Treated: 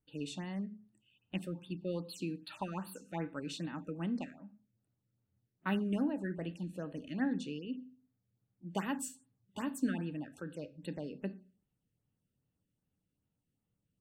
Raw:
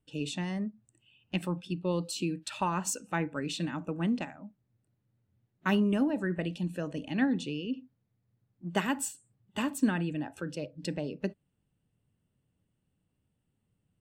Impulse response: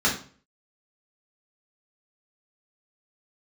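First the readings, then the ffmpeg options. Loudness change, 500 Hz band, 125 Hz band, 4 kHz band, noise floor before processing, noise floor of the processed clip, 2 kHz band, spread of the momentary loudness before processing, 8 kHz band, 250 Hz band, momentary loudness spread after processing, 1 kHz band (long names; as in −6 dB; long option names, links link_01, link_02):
−6.5 dB, −7.0 dB, −6.5 dB, −8.5 dB, −79 dBFS, −85 dBFS, −8.5 dB, 10 LU, −11.0 dB, −6.0 dB, 10 LU, −8.5 dB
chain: -filter_complex "[0:a]asplit=2[link_01][link_02];[1:a]atrim=start_sample=2205[link_03];[link_02][link_03]afir=irnorm=-1:irlink=0,volume=-25.5dB[link_04];[link_01][link_04]amix=inputs=2:normalize=0,afftfilt=real='re*(1-between(b*sr/1024,850*pow(7100/850,0.5+0.5*sin(2*PI*2.5*pts/sr))/1.41,850*pow(7100/850,0.5+0.5*sin(2*PI*2.5*pts/sr))*1.41))':imag='im*(1-between(b*sr/1024,850*pow(7100/850,0.5+0.5*sin(2*PI*2.5*pts/sr))/1.41,850*pow(7100/850,0.5+0.5*sin(2*PI*2.5*pts/sr))*1.41))':win_size=1024:overlap=0.75,volume=-7dB"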